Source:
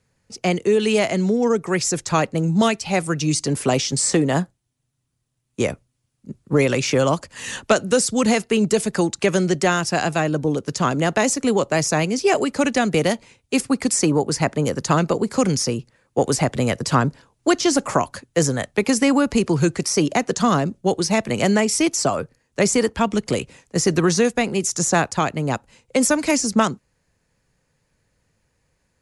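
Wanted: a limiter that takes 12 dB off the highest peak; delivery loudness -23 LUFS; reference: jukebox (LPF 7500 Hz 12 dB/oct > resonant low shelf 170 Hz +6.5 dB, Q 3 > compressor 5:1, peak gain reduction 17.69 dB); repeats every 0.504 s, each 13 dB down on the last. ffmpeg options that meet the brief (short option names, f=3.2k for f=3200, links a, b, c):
-af "alimiter=limit=-14.5dB:level=0:latency=1,lowpass=7.5k,lowshelf=f=170:t=q:w=3:g=6.5,aecho=1:1:504|1008|1512:0.224|0.0493|0.0108,acompressor=threshold=-30dB:ratio=5,volume=10dB"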